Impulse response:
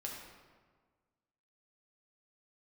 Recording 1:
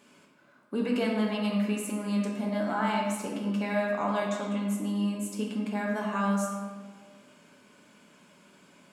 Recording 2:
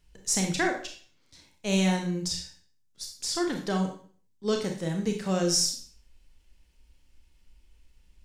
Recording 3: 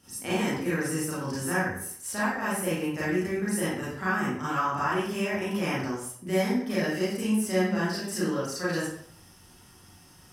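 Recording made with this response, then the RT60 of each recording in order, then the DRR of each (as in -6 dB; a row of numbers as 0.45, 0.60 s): 1; 1.5, 0.50, 0.65 s; -2.5, 2.5, -10.0 dB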